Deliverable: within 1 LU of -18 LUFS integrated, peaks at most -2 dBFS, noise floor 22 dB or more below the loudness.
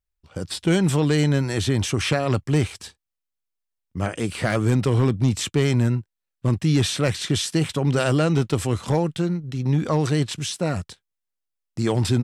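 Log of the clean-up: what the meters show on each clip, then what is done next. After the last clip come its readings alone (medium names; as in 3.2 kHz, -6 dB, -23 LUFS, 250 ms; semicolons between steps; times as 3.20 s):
clipped samples 0.4%; clipping level -11.0 dBFS; loudness -22.5 LUFS; peak level -11.0 dBFS; loudness target -18.0 LUFS
-> clip repair -11 dBFS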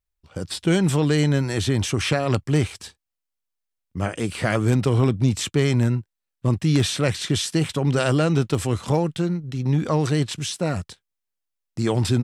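clipped samples 0.0%; loudness -22.5 LUFS; peak level -4.0 dBFS; loudness target -18.0 LUFS
-> trim +4.5 dB; peak limiter -2 dBFS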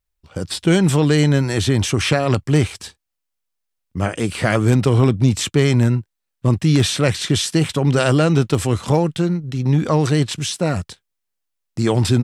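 loudness -18.0 LUFS; peak level -2.0 dBFS; noise floor -78 dBFS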